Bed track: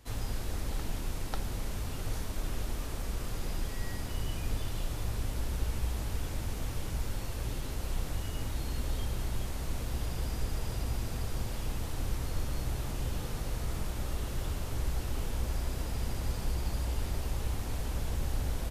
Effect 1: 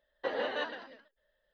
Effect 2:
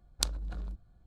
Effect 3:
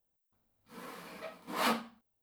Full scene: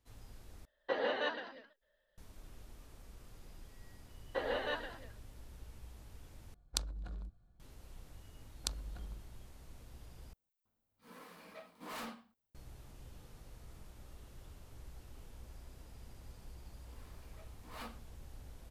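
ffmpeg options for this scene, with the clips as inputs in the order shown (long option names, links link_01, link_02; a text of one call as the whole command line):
ffmpeg -i bed.wav -i cue0.wav -i cue1.wav -i cue2.wav -filter_complex "[1:a]asplit=2[link_01][link_02];[2:a]asplit=2[link_03][link_04];[3:a]asplit=2[link_05][link_06];[0:a]volume=-19.5dB[link_07];[link_04]aresample=32000,aresample=44100[link_08];[link_05]volume=34.5dB,asoftclip=hard,volume=-34.5dB[link_09];[link_07]asplit=4[link_10][link_11][link_12][link_13];[link_10]atrim=end=0.654[link_14];[link_01]atrim=end=1.53,asetpts=PTS-STARTPTS,volume=-1dB[link_15];[link_11]atrim=start=2.176:end=6.544[link_16];[link_03]atrim=end=1.06,asetpts=PTS-STARTPTS,volume=-6dB[link_17];[link_12]atrim=start=7.596:end=10.334[link_18];[link_09]atrim=end=2.22,asetpts=PTS-STARTPTS,volume=-7.5dB[link_19];[link_13]atrim=start=12.546[link_20];[link_02]atrim=end=1.53,asetpts=PTS-STARTPTS,volume=-3dB,afade=type=in:duration=0.004:curve=hsin,afade=type=out:start_time=1.526:duration=0.004:curve=hsin,adelay=4110[link_21];[link_08]atrim=end=1.06,asetpts=PTS-STARTPTS,volume=-8.5dB,afade=type=in:duration=0.004:curve=hsin,afade=type=out:start_time=1.056:duration=0.004:curve=hsin,adelay=8440[link_22];[link_06]atrim=end=2.22,asetpts=PTS-STARTPTS,volume=-17.5dB,afade=type=in:duration=0.004:curve=hsin,afade=type=out:start_time=2.216:duration=0.004:curve=hsin,adelay=16150[link_23];[link_14][link_15]acrossfade=duration=0.004:curve1=hsin:curve2=hsin[link_24];[link_24][link_16]acrossfade=duration=0.004:curve1=hsin:curve2=hsin[link_25];[link_25][link_17]acrossfade=duration=0.004:curve1=hsin:curve2=hsin[link_26];[link_26][link_18]acrossfade=duration=0.004:curve1=hsin:curve2=hsin[link_27];[link_27][link_19]acrossfade=duration=0.004:curve1=hsin:curve2=hsin[link_28];[link_28][link_20]acrossfade=duration=0.004:curve1=hsin:curve2=hsin[link_29];[link_29][link_21][link_22][link_23]amix=inputs=4:normalize=0" out.wav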